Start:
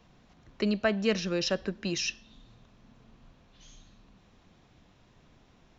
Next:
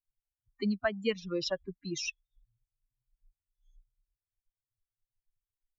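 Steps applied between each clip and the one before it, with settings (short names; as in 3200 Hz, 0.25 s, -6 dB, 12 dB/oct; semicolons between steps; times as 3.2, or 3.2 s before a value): per-bin expansion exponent 3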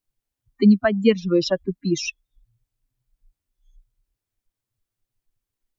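bell 250 Hz +10.5 dB 1.9 oct; gain +7.5 dB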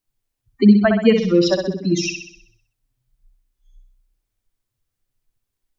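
flutter echo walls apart 10.9 m, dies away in 0.65 s; gain +2.5 dB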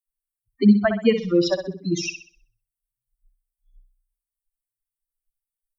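per-bin expansion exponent 1.5; gain -2.5 dB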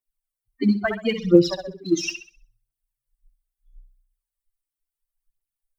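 phaser 0.74 Hz, delay 3.6 ms, feedback 71%; gain -3 dB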